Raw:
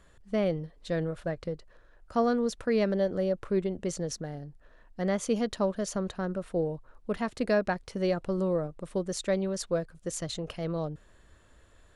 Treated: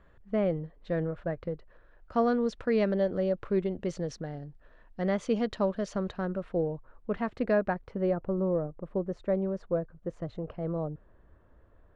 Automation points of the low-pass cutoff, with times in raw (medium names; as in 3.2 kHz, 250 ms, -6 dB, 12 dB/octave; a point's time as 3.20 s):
1.38 s 2 kHz
2.28 s 3.6 kHz
6.14 s 3.6 kHz
6.69 s 2.2 kHz
7.44 s 2.2 kHz
8.32 s 1.1 kHz